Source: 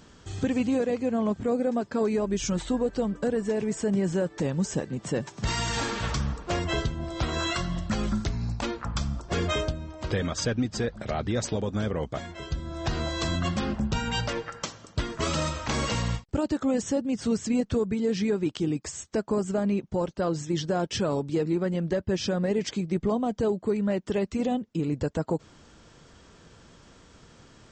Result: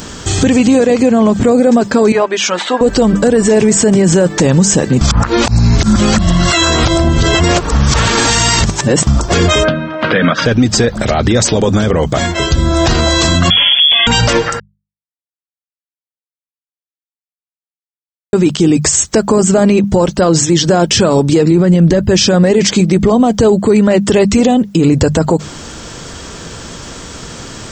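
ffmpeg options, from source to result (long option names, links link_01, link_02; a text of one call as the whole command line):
ffmpeg -i in.wav -filter_complex "[0:a]asettb=1/sr,asplit=3[link_01][link_02][link_03];[link_01]atrim=end=2.124[link_04];[link_02]atrim=start=2.12:end=2.81,asetpts=PTS-STARTPTS,afade=type=in:duration=0.004:curve=qsin,afade=type=out:start_time=0.686:duration=0.004:curve=qsin,highpass=710,lowpass=3000[link_05];[link_03]atrim=start=2.806[link_06];[link_04][link_05]acrossfade=duration=0.004:curve1=hsin:curve2=qsin[link_07];[link_07][link_06]acrossfade=duration=0.004:curve1=qsin:curve2=hsin,asplit=3[link_08][link_09][link_10];[link_08]afade=type=out:start_time=9.63:duration=0.02[link_11];[link_09]highpass=frequency=160:width=0.5412,highpass=frequency=160:width=1.3066,equalizer=frequency=370:width_type=q:width=4:gain=-10,equalizer=frequency=840:width_type=q:width=4:gain=-6,equalizer=frequency=1500:width_type=q:width=4:gain=7,lowpass=frequency=3100:width=0.5412,lowpass=frequency=3100:width=1.3066,afade=type=in:start_time=9.63:duration=0.02,afade=type=out:start_time=10.45:duration=0.02[link_12];[link_10]afade=type=in:start_time=10.45:duration=0.02[link_13];[link_11][link_12][link_13]amix=inputs=3:normalize=0,asettb=1/sr,asplit=3[link_14][link_15][link_16];[link_14]atrim=end=13.504[link_17];[link_15]atrim=start=13.5:end=14.07,asetpts=PTS-STARTPTS,afade=type=in:duration=0.004:curve=qsin,afade=type=out:start_time=0.566:duration=0.004:curve=qsin,lowpass=frequency=3000:width_type=q:width=0.5098,lowpass=frequency=3000:width_type=q:width=0.6013,lowpass=frequency=3000:width_type=q:width=0.9,lowpass=frequency=3000:width_type=q:width=2.563,afreqshift=-3500[link_18];[link_16]atrim=start=14.066[link_19];[link_17][link_18]acrossfade=duration=0.004:curve1=hsin:curve2=qsin[link_20];[link_20][link_19]acrossfade=duration=0.004:curve1=qsin:curve2=hsin,asettb=1/sr,asplit=3[link_21][link_22][link_23];[link_21]atrim=end=21.514[link_24];[link_22]atrim=start=21.51:end=22,asetpts=PTS-STARTPTS,afade=type=in:duration=0.004:curve=qsin,afade=type=out:start_time=0.486:duration=0.004:curve=qsin,lowshelf=frequency=230:gain=9.5[link_25];[link_23]atrim=start=21.996[link_26];[link_24][link_25]acrossfade=duration=0.004:curve1=hsin:curve2=qsin[link_27];[link_27][link_26]acrossfade=duration=0.004:curve1=qsin:curve2=hsin,asplit=5[link_28][link_29][link_30][link_31][link_32];[link_28]atrim=end=5.012[link_33];[link_29]atrim=start=5.008:end=9.072,asetpts=PTS-STARTPTS,areverse[link_34];[link_30]atrim=start=9.068:end=14.6,asetpts=PTS-STARTPTS,afade=type=out:start_time=5.528:duration=0.004:curve=hsin[link_35];[link_31]atrim=start=14.6:end=18.33,asetpts=PTS-STARTPTS,volume=0[link_36];[link_32]atrim=start=18.33,asetpts=PTS-STARTPTS,afade=type=in:duration=0.004:curve=hsin[link_37];[link_33][link_34]acrossfade=duration=0.004:curve1=hsin:curve2=hsin[link_38];[link_35][link_36][link_37]concat=n=3:v=0:a=1[link_39];[link_38][link_39]acrossfade=duration=0.004:curve1=hsin:curve2=hsin,highshelf=frequency=6600:gain=11.5,bandreject=frequency=50:width_type=h:width=6,bandreject=frequency=100:width_type=h:width=6,bandreject=frequency=150:width_type=h:width=6,bandreject=frequency=200:width_type=h:width=6,alimiter=level_in=25dB:limit=-1dB:release=50:level=0:latency=1,volume=-1dB" out.wav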